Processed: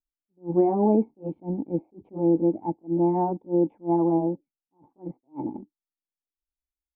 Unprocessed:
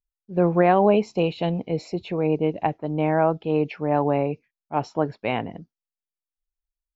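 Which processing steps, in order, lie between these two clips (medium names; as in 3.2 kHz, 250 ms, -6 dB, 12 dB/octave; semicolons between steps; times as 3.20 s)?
pitch bend over the whole clip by +4.5 st starting unshifted; in parallel at -9.5 dB: bit crusher 6-bit; on the sum: cascade formant filter u; attacks held to a fixed rise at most 320 dB/s; trim +8 dB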